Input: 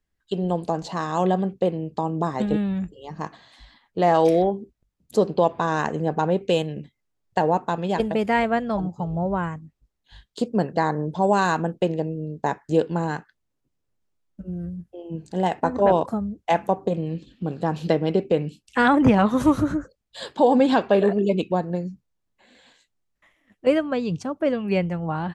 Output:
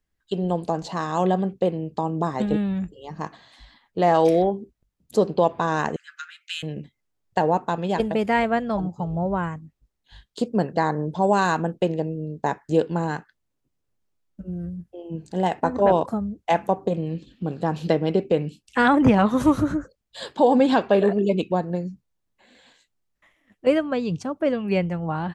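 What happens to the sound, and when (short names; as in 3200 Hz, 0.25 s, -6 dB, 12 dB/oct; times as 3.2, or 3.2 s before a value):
5.96–6.63 steep high-pass 1300 Hz 96 dB/oct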